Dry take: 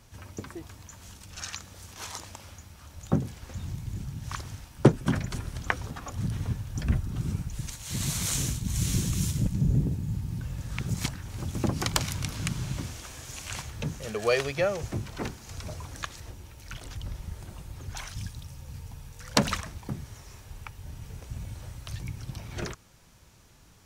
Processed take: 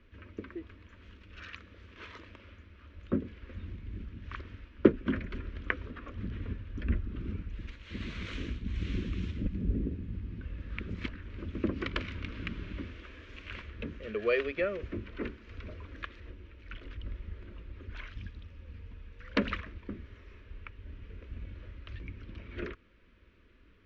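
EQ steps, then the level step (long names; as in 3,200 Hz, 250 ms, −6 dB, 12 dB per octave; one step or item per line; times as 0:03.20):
low-pass filter 2,700 Hz 24 dB per octave
phaser with its sweep stopped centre 330 Hz, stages 4
0.0 dB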